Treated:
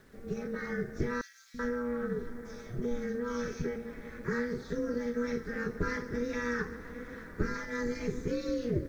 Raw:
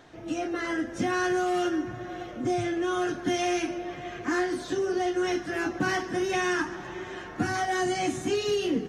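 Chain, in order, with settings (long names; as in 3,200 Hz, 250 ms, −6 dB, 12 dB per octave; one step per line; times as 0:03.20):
high-shelf EQ 2,800 Hz −10 dB
phaser with its sweep stopped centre 2,900 Hz, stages 6
ring modulation 120 Hz
bit reduction 11 bits
low-shelf EQ 72 Hz +7.5 dB
0:01.21–0:03.76: three-band delay without the direct sound highs, lows, mids 330/380 ms, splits 250/2,600 Hz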